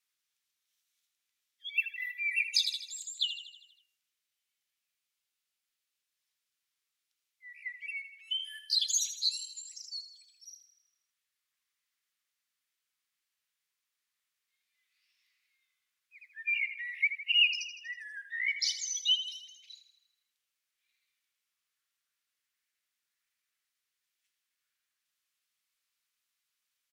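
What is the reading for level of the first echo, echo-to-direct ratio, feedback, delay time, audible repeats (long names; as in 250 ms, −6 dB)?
−11.5 dB, −9.5 dB, 58%, 80 ms, 5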